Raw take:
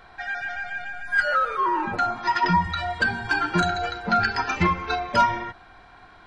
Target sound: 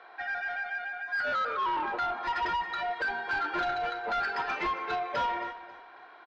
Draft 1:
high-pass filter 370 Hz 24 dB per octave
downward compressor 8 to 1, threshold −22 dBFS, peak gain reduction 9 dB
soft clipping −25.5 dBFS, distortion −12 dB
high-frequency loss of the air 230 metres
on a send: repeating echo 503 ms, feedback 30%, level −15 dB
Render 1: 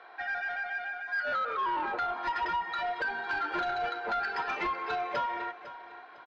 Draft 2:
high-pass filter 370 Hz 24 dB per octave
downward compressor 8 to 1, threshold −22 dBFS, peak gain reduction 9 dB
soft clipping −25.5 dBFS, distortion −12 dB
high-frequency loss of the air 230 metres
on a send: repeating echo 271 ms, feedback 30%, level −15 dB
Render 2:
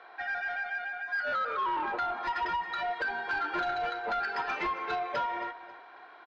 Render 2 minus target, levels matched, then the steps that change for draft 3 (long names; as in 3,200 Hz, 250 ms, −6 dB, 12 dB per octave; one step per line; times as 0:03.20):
downward compressor: peak gain reduction +9 dB
remove: downward compressor 8 to 1, threshold −22 dBFS, peak gain reduction 9 dB